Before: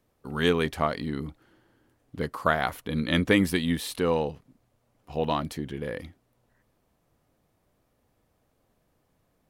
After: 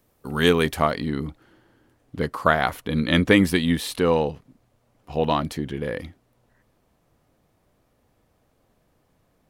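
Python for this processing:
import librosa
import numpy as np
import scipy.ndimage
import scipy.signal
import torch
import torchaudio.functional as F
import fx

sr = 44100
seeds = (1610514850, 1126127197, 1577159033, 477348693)

y = fx.high_shelf(x, sr, hz=8800.0, db=fx.steps((0.0, 9.0), (0.9, -3.5)))
y = y * 10.0 ** (5.0 / 20.0)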